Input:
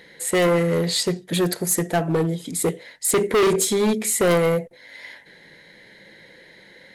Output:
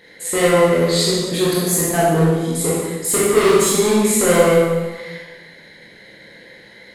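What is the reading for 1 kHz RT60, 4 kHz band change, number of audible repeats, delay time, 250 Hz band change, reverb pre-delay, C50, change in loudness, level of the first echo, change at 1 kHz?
1.3 s, +5.0 dB, no echo audible, no echo audible, +5.0 dB, 18 ms, −2.0 dB, +5.0 dB, no echo audible, +6.0 dB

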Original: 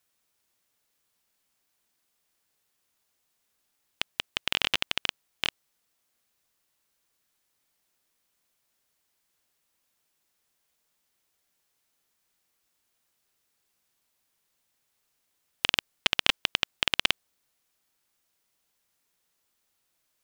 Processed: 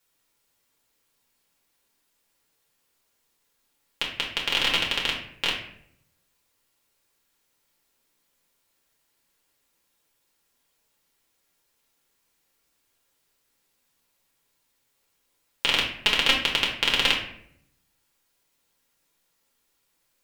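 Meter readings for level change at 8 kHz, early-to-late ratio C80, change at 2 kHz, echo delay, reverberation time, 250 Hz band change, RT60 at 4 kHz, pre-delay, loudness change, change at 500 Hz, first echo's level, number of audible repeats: +3.0 dB, 9.5 dB, +5.0 dB, no echo audible, 0.70 s, +6.5 dB, 0.45 s, 4 ms, +4.0 dB, +6.0 dB, no echo audible, no echo audible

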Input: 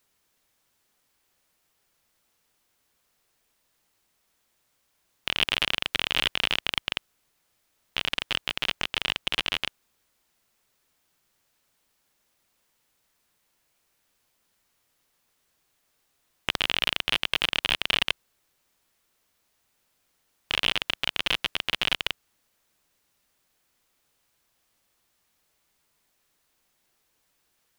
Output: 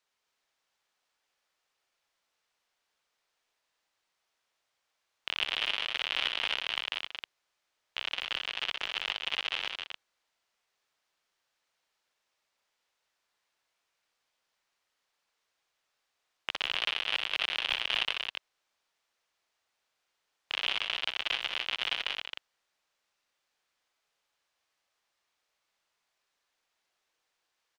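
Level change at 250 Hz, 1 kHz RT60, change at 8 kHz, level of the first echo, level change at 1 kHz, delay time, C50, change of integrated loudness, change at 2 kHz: −14.0 dB, no reverb audible, −10.5 dB, −6.5 dB, −5.0 dB, 61 ms, no reverb audible, −5.0 dB, −4.5 dB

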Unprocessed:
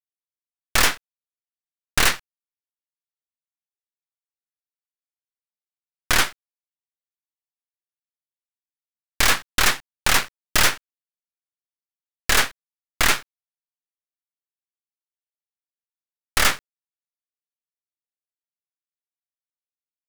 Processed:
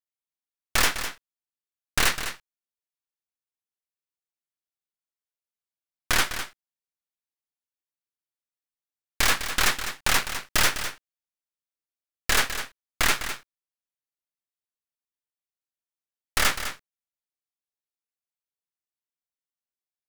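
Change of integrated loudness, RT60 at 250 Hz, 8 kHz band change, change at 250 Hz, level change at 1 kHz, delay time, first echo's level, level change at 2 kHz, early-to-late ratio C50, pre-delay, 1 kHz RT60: −4.5 dB, no reverb audible, −3.5 dB, −3.5 dB, −3.5 dB, 204 ms, −10.0 dB, −3.5 dB, no reverb audible, no reverb audible, no reverb audible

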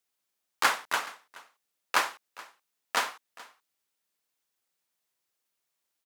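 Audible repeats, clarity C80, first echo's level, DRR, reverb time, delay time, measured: 1, no reverb audible, −20.5 dB, no reverb audible, no reverb audible, 425 ms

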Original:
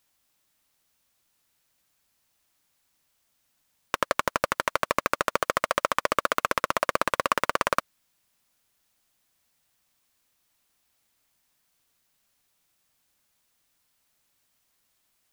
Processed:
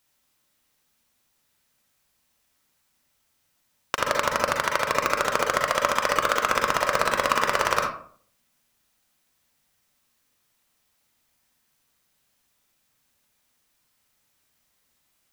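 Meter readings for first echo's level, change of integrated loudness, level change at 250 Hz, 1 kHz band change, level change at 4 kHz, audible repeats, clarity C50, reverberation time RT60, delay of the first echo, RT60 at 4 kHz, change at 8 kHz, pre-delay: no echo audible, +3.0 dB, +1.5 dB, +3.0 dB, +4.5 dB, no echo audible, 3.0 dB, 0.55 s, no echo audible, 0.30 s, +5.0 dB, 38 ms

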